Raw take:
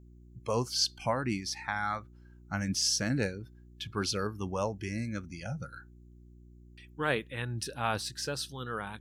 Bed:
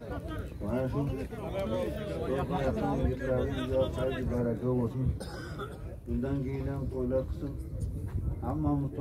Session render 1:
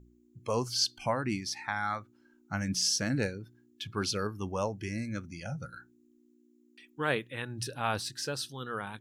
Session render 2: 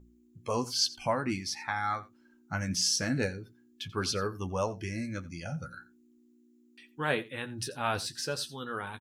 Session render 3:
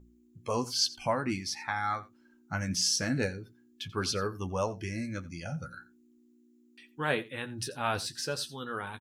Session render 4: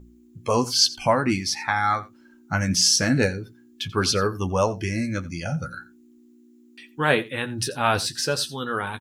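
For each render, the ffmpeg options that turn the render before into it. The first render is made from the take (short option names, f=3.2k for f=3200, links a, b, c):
-af "bandreject=f=60:t=h:w=4,bandreject=f=120:t=h:w=4,bandreject=f=180:t=h:w=4"
-filter_complex "[0:a]asplit=2[a][b];[b]adelay=12,volume=-7dB[c];[a][c]amix=inputs=2:normalize=0,aecho=1:1:87:0.106"
-af anull
-af "volume=9.5dB"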